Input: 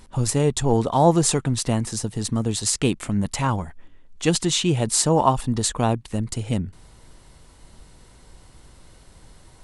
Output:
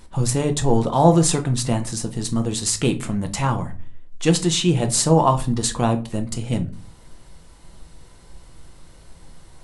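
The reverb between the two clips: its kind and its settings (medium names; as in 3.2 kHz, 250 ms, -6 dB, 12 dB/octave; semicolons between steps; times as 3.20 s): simulated room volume 200 m³, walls furnished, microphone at 0.79 m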